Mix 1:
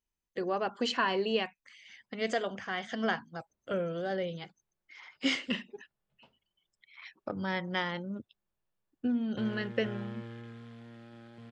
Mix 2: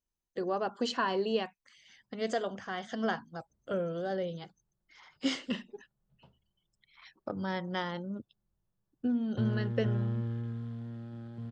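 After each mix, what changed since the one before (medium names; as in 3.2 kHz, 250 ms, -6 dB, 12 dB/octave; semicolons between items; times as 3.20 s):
background: add tone controls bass +13 dB, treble -5 dB; master: add peaking EQ 2.3 kHz -9 dB 0.79 oct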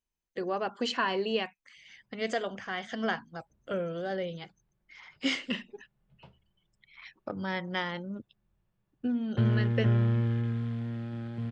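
background +6.5 dB; master: add peaking EQ 2.3 kHz +9 dB 0.79 oct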